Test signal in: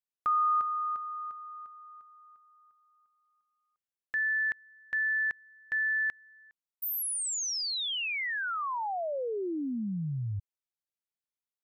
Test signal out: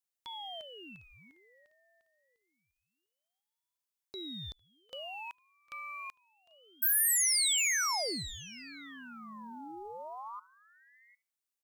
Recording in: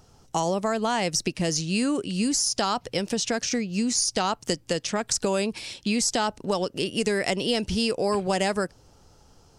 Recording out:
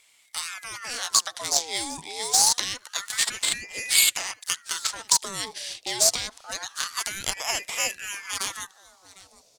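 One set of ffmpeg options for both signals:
ffmpeg -i in.wav -filter_complex "[0:a]aexciter=amount=10.9:drive=2.1:freq=2200,asplit=2[link_01][link_02];[link_02]adelay=74,lowpass=frequency=1200:poles=1,volume=-22dB,asplit=2[link_03][link_04];[link_04]adelay=74,lowpass=frequency=1200:poles=1,volume=0.16[link_05];[link_03][link_05]amix=inputs=2:normalize=0[link_06];[link_01][link_06]amix=inputs=2:normalize=0,aeval=exprs='3.35*(cos(1*acos(clip(val(0)/3.35,-1,1)))-cos(1*PI/2))+0.0376*(cos(3*acos(clip(val(0)/3.35,-1,1)))-cos(3*PI/2))+0.0299*(cos(5*acos(clip(val(0)/3.35,-1,1)))-cos(5*PI/2))+0.15*(cos(6*acos(clip(val(0)/3.35,-1,1)))-cos(6*PI/2))+0.119*(cos(7*acos(clip(val(0)/3.35,-1,1)))-cos(7*PI/2))':channel_layout=same,acrusher=bits=8:mode=log:mix=0:aa=0.000001,lowshelf=frequency=410:gain=7.5,asplit=2[link_07][link_08];[link_08]aecho=0:1:754:0.1[link_09];[link_07][link_09]amix=inputs=2:normalize=0,aeval=exprs='val(0)*sin(2*PI*1400*n/s+1400*0.6/0.26*sin(2*PI*0.26*n/s))':channel_layout=same,volume=-12dB" out.wav

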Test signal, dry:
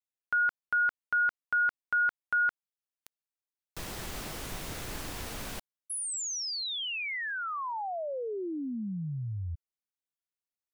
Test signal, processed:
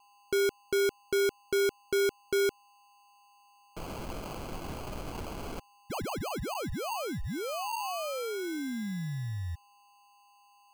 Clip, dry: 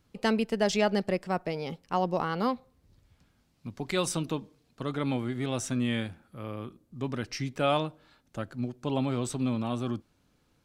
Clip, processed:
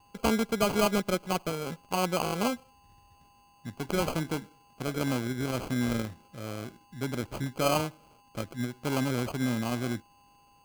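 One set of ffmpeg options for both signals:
ffmpeg -i in.wav -af "aeval=exprs='val(0)+0.00112*sin(2*PI*4700*n/s)':channel_layout=same,acrusher=samples=24:mix=1:aa=0.000001" out.wav

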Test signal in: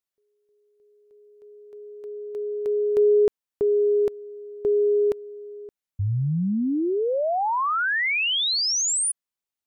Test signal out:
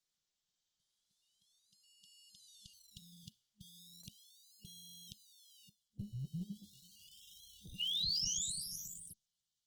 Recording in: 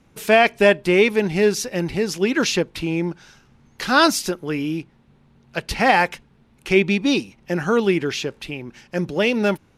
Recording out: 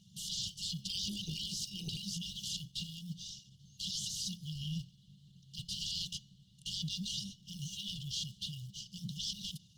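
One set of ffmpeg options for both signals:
ffmpeg -i in.wav -filter_complex "[0:a]highshelf=frequency=2100:gain=11.5,aeval=exprs='1.58*(cos(1*acos(clip(val(0)/1.58,-1,1)))-cos(1*PI/2))+0.0251*(cos(3*acos(clip(val(0)/1.58,-1,1)))-cos(3*PI/2))+0.708*(cos(4*acos(clip(val(0)/1.58,-1,1)))-cos(4*PI/2))+0.0282*(cos(5*acos(clip(val(0)/1.58,-1,1)))-cos(5*PI/2))+0.0562*(cos(7*acos(clip(val(0)/1.58,-1,1)))-cos(7*PI/2))':channel_layout=same,afftfilt=real='re*lt(hypot(re,im),0.447)':imag='im*lt(hypot(re,im),0.447)':win_size=1024:overlap=0.75,areverse,acompressor=threshold=-31dB:ratio=16:attack=1.3:release=23:knee=6:detection=peak,areverse,highpass=120,lowpass=6100,bandreject=frequency=419.4:width_type=h:width=4,bandreject=frequency=838.8:width_type=h:width=4,bandreject=frequency=1258.2:width_type=h:width=4,bandreject=frequency=1677.6:width_type=h:width=4,bandreject=frequency=2097:width_type=h:width=4,bandreject=frequency=2516.4:width_type=h:width=4,bandreject=frequency=2935.8:width_type=h:width=4,bandreject=frequency=3355.2:width_type=h:width=4,bandreject=frequency=3774.6:width_type=h:width=4,bandreject=frequency=4194:width_type=h:width=4,bandreject=frequency=4613.4:width_type=h:width=4,bandreject=frequency=5032.8:width_type=h:width=4,bandreject=frequency=5452.2:width_type=h:width=4,bandreject=frequency=5871.6:width_type=h:width=4,bandreject=frequency=6291:width_type=h:width=4,bandreject=frequency=6710.4:width_type=h:width=4,asplit=2[link_01][link_02];[link_02]acrusher=samples=25:mix=1:aa=0.000001:lfo=1:lforange=15:lforate=0.36,volume=-11dB[link_03];[link_01][link_03]amix=inputs=2:normalize=0,afftfilt=real='re*(1-between(b*sr/4096,210,2800))':imag='im*(1-between(b*sr/4096,210,2800))':win_size=4096:overlap=0.75" -ar 48000 -c:a libopus -b:a 16k out.opus

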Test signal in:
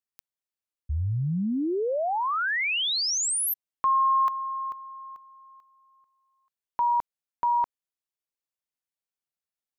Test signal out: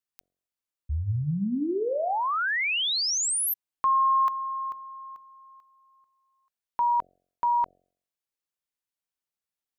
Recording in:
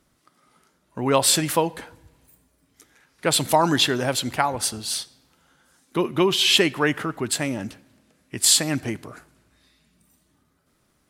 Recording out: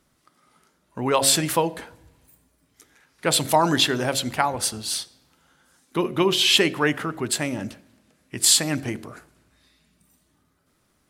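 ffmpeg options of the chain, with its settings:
ffmpeg -i in.wav -af "bandreject=frequency=45.47:width_type=h:width=4,bandreject=frequency=90.94:width_type=h:width=4,bandreject=frequency=136.41:width_type=h:width=4,bandreject=frequency=181.88:width_type=h:width=4,bandreject=frequency=227.35:width_type=h:width=4,bandreject=frequency=272.82:width_type=h:width=4,bandreject=frequency=318.29:width_type=h:width=4,bandreject=frequency=363.76:width_type=h:width=4,bandreject=frequency=409.23:width_type=h:width=4,bandreject=frequency=454.7:width_type=h:width=4,bandreject=frequency=500.17:width_type=h:width=4,bandreject=frequency=545.64:width_type=h:width=4,bandreject=frequency=591.11:width_type=h:width=4,bandreject=frequency=636.58:width_type=h:width=4,bandreject=frequency=682.05:width_type=h:width=4,bandreject=frequency=727.52:width_type=h:width=4" out.wav

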